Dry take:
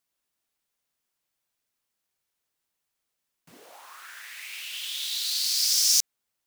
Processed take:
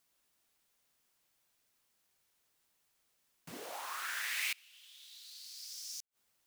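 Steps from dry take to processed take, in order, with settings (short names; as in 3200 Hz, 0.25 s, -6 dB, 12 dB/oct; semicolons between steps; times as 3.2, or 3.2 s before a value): flipped gate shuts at -28 dBFS, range -29 dB; gain +5 dB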